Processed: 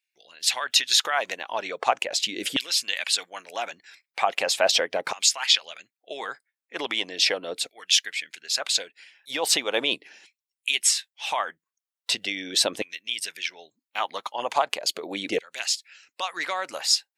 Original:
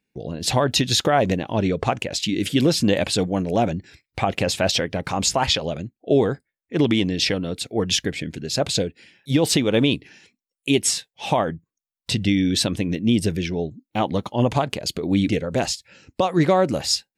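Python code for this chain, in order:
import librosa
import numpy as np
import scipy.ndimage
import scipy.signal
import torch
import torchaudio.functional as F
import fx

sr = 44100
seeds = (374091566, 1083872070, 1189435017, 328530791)

y = fx.filter_lfo_highpass(x, sr, shape='saw_down', hz=0.39, low_hz=500.0, high_hz=2500.0, q=1.1)
y = fx.hpss(y, sr, part='percussive', gain_db=6)
y = F.gain(torch.from_numpy(y), -5.0).numpy()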